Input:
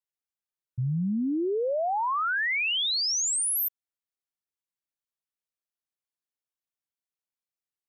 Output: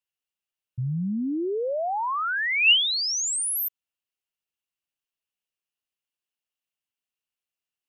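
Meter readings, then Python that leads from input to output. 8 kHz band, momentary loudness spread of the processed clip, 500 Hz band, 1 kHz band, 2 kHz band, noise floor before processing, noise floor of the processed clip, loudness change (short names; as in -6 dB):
0.0 dB, 13 LU, 0.0 dB, 0.0 dB, +4.0 dB, under -85 dBFS, under -85 dBFS, +2.5 dB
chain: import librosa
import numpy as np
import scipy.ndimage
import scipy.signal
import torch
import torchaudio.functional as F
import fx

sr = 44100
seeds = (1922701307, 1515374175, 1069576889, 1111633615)

y = fx.peak_eq(x, sr, hz=2800.0, db=12.5, octaves=0.31)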